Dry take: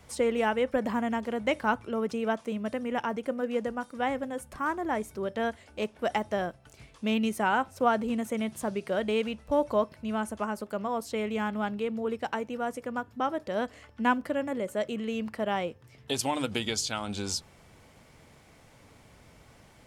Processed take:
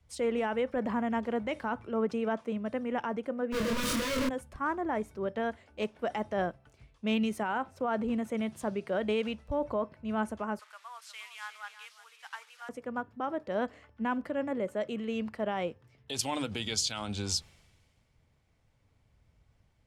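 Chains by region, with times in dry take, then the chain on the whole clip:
0:03.52–0:04.29: sign of each sample alone + Butterworth band-reject 780 Hz, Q 3.1 + double-tracking delay 27 ms −2 dB
0:10.59–0:12.69: linear delta modulator 64 kbit/s, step −42 dBFS + high-pass filter 1,100 Hz 24 dB per octave + single-tap delay 358 ms −9.5 dB
whole clip: low-pass filter 3,900 Hz 6 dB per octave; brickwall limiter −23 dBFS; multiband upward and downward expander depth 70%

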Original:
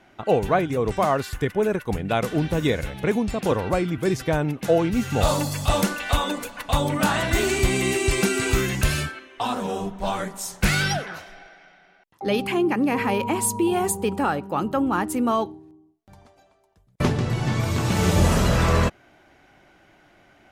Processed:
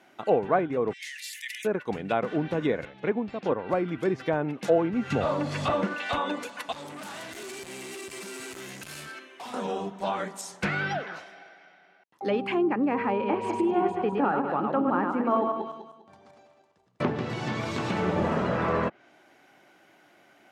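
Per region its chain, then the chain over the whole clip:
0:00.93–0:01.65: Butterworth high-pass 1,800 Hz 96 dB per octave + level that may fall only so fast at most 39 dB per second
0:02.85–0:03.69: high-frequency loss of the air 150 metres + expander for the loud parts, over −34 dBFS
0:05.10–0:05.94: variable-slope delta modulation 64 kbit/s + parametric band 830 Hz −6.5 dB 0.29 octaves + multiband upward and downward compressor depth 100%
0:06.72–0:09.54: downward compressor 3 to 1, threshold −29 dBFS + hard clipping −35 dBFS
0:10.41–0:12.23: low-pass filter 12,000 Hz 24 dB per octave + high-shelf EQ 5,700 Hz −11 dB
0:13.12–0:17.08: feedback delay that plays each chunk backwards 100 ms, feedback 54%, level −3.5 dB + high-frequency loss of the air 93 metres
whole clip: high-pass filter 210 Hz 12 dB per octave; treble cut that deepens with the level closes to 1,700 Hz, closed at −20 dBFS; high-shelf EQ 11,000 Hz +10.5 dB; level −2.5 dB

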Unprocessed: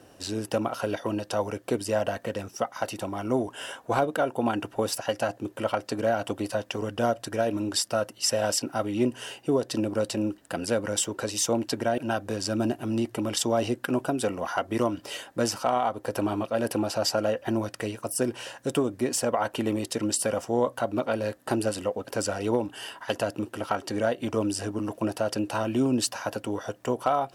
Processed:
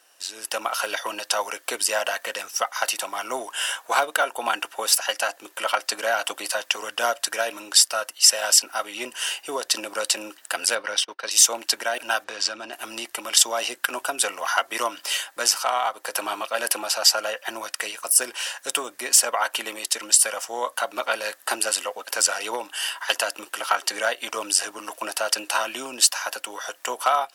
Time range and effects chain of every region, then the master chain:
0:10.75–0:11.31: Savitzky-Golay smoothing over 15 samples + noise gate −34 dBFS, range −27 dB
0:12.24–0:12.73: low-pass filter 4,700 Hz + downward compressor 4 to 1, threshold −28 dBFS
whole clip: high-pass filter 1,200 Hz 12 dB per octave; high-shelf EQ 5,800 Hz +5.5 dB; automatic gain control gain up to 11.5 dB

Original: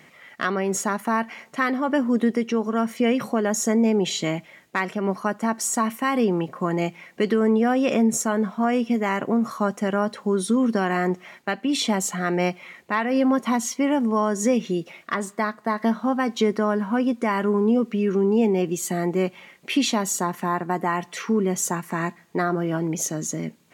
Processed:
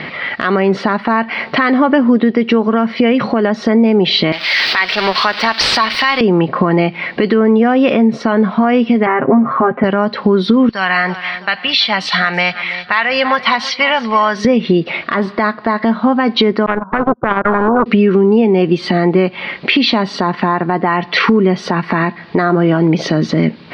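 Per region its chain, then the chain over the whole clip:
0:04.32–0:06.21: converter with a step at zero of −33 dBFS + first difference + leveller curve on the samples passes 3
0:09.06–0:09.84: low-pass filter 2,000 Hz 24 dB per octave + comb filter 7.5 ms, depth 85%
0:10.69–0:14.45: guitar amp tone stack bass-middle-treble 10-0-10 + repeating echo 328 ms, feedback 43%, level −18.5 dB
0:16.66–0:17.86: Butterworth low-pass 1,500 Hz 96 dB per octave + noise gate −21 dBFS, range −44 dB + every bin compressed towards the loudest bin 4 to 1
whole clip: elliptic low-pass filter 4,600 Hz, stop band 40 dB; downward compressor 12 to 1, threshold −33 dBFS; boost into a limiter +27 dB; level −1 dB

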